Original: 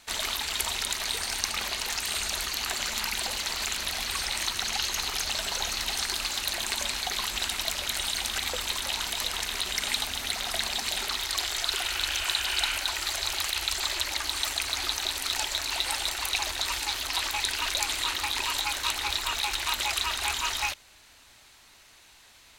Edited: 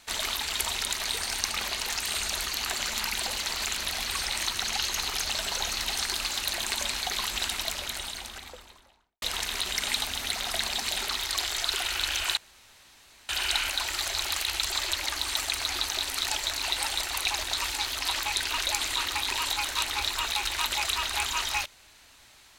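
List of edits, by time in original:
7.43–9.22 studio fade out
12.37 insert room tone 0.92 s

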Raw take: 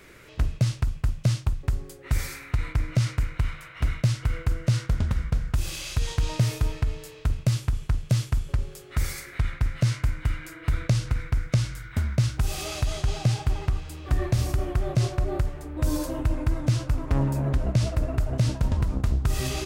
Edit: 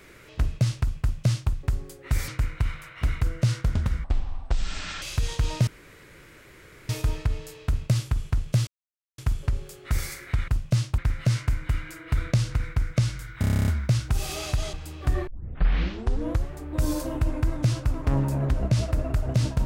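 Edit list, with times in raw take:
1.01–1.51 copy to 9.54
2.28–3.07 cut
4–4.46 cut
5.29–5.81 speed 53%
6.46 insert room tone 1.22 s
8.24 insert silence 0.51 s
11.96 stutter 0.03 s, 10 plays
13.02–13.77 cut
14.31 tape start 1.22 s

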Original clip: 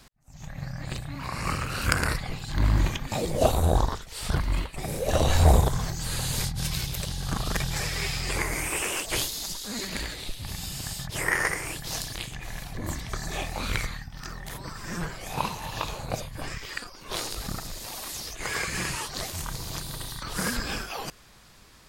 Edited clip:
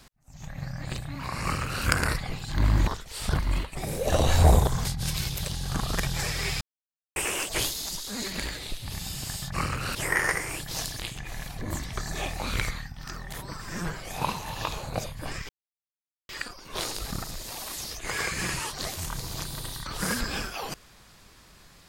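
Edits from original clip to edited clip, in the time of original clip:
1.43–1.84 copy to 11.11
2.87–3.88 cut
5.86–6.42 cut
8.18–8.73 mute
16.65 insert silence 0.80 s

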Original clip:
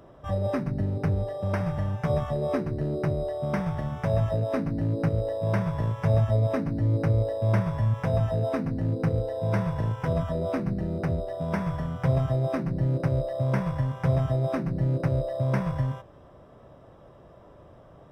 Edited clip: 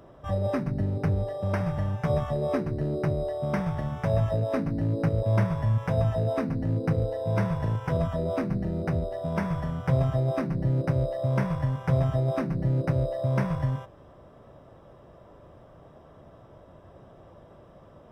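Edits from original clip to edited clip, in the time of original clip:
5.23–7.39 cut

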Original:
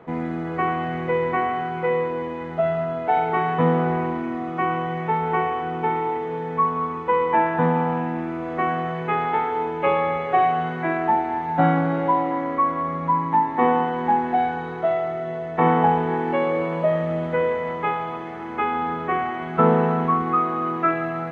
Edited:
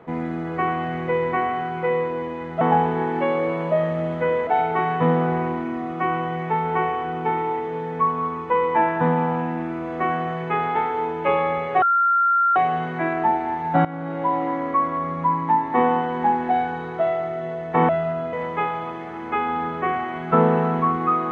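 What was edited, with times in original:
2.61–3.05 swap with 15.73–17.59
10.4 add tone 1380 Hz -15 dBFS 0.74 s
11.69–12.28 fade in, from -16.5 dB

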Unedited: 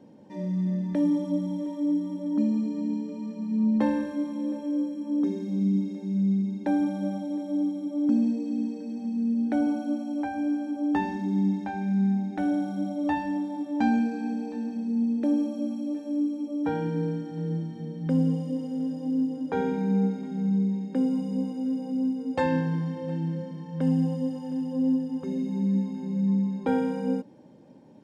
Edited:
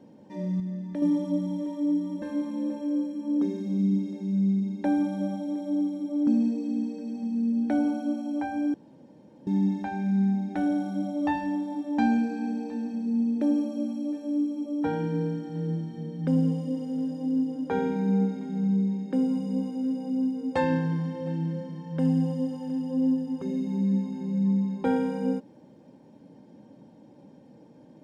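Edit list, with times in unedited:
0.6–1.02 gain -6 dB
2.22–4.04 cut
10.56–11.29 room tone

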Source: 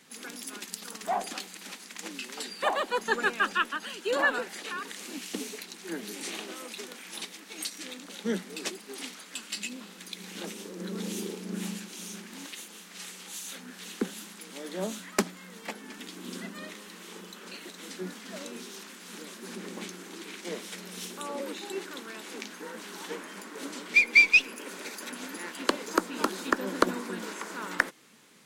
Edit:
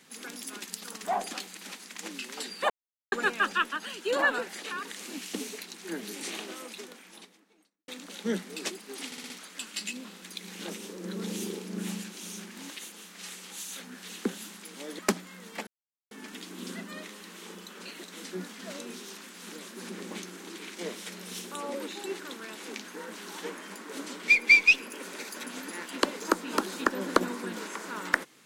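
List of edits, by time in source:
2.7–3.12 mute
6.45–7.88 studio fade out
9.06 stutter 0.06 s, 5 plays
14.75–15.09 cut
15.77 insert silence 0.44 s

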